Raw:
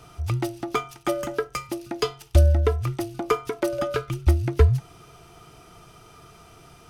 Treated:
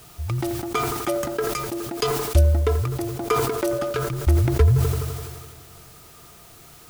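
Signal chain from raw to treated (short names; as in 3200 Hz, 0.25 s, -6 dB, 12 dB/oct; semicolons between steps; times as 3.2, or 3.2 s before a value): Wiener smoothing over 15 samples; high shelf 4200 Hz +7 dB; requantised 8-bit, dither triangular; analogue delay 84 ms, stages 1024, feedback 82%, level -18 dB; sustainer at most 34 dB/s; gain -1 dB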